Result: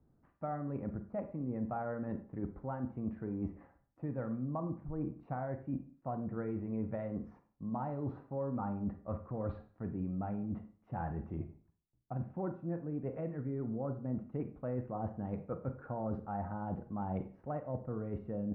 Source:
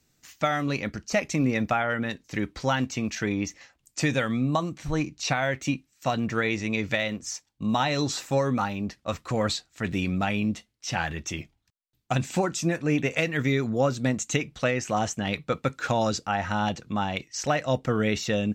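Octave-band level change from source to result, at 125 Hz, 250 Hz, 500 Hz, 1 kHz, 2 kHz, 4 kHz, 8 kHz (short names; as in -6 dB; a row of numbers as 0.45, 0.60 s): -9.5 dB, -10.5 dB, -12.5 dB, -14.0 dB, -27.5 dB, under -40 dB, under -40 dB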